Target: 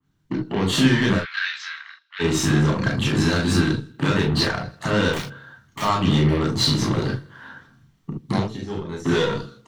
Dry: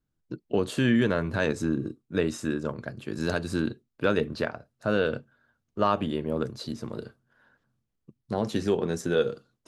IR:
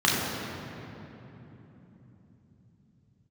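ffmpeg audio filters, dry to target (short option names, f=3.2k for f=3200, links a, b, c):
-filter_complex "[0:a]acompressor=threshold=-33dB:ratio=16,alimiter=level_in=6dB:limit=-24dB:level=0:latency=1:release=75,volume=-6dB,aecho=1:1:80|160|240|320:0.106|0.054|0.0276|0.0141,asplit=3[a][b][c];[a]afade=t=out:st=8.39:d=0.02[d];[b]agate=range=-33dB:threshold=-31dB:ratio=3:detection=peak,afade=t=in:st=8.39:d=0.02,afade=t=out:st=9.04:d=0.02[e];[c]afade=t=in:st=9.04:d=0.02[f];[d][e][f]amix=inputs=3:normalize=0,aeval=exprs='0.0355*(cos(1*acos(clip(val(0)/0.0355,-1,1)))-cos(1*PI/2))+0.00316*(cos(8*acos(clip(val(0)/0.0355,-1,1)))-cos(8*PI/2))':c=same,dynaudnorm=f=130:g=5:m=8dB,asettb=1/sr,asplit=3[g][h][i];[g]atrim=end=5.134[j];[h]atrim=start=5.13:end=5.82,asetpts=PTS-STARTPTS,afade=t=in:d=0.004:c=qsin,afade=t=out:st=0.686:d=0.004:c=qsin,aeval=exprs='(mod(59.6*val(0)+1,2)-1)/59.6':c=same[k];[i]atrim=start=5.816[l];[j][k]acrossfade=d=0.004:c1=hsin:c2=qsin[m];[m][l]acrossfade=d=0.004:c1=qsin:c2=hsin,flanger=delay=0.3:depth=8:regen=86:speed=0.64:shape=triangular,asplit=3[n][o][p];[n]afade=t=out:st=1.16:d=0.02[q];[o]asuperpass=centerf=2700:order=8:qfactor=0.74,afade=t=in:st=1.16:d=0.02,afade=t=out:st=2.19:d=0.02[r];[p]afade=t=in:st=2.19:d=0.02[s];[q][r][s]amix=inputs=3:normalize=0[t];[1:a]atrim=start_sample=2205,atrim=end_sample=3528[u];[t][u]afir=irnorm=-1:irlink=0,adynamicequalizer=threshold=0.01:dfrequency=2800:dqfactor=0.7:tfrequency=2800:tqfactor=0.7:attack=5:release=100:ratio=0.375:range=1.5:mode=boostabove:tftype=highshelf,volume=4dB"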